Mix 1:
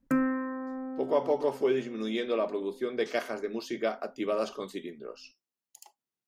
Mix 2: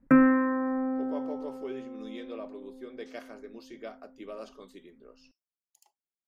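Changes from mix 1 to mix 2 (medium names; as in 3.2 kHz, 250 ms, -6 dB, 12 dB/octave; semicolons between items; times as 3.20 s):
speech -12.0 dB; background +7.5 dB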